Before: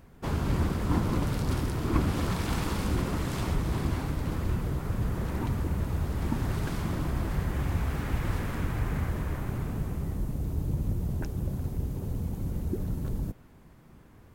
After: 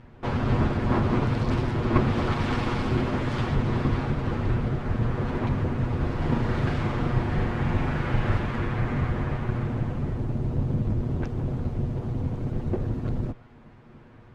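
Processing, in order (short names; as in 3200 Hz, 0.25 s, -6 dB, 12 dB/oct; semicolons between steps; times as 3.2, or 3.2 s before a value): minimum comb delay 8.3 ms; LPF 3300 Hz 12 dB/oct; 5.96–8.38 flutter echo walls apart 6.8 m, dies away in 0.39 s; gain +6 dB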